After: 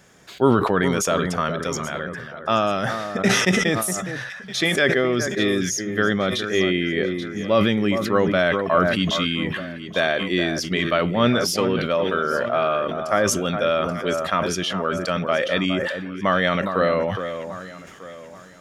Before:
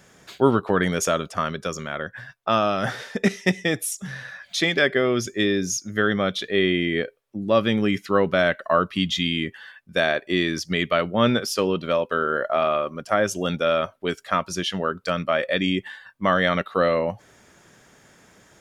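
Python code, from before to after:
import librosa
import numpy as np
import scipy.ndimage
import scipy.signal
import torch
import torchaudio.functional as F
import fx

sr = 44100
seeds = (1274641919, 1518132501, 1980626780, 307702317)

p1 = x + fx.echo_alternate(x, sr, ms=415, hz=1800.0, feedback_pct=57, wet_db=-9.0, dry=0)
y = fx.sustainer(p1, sr, db_per_s=36.0)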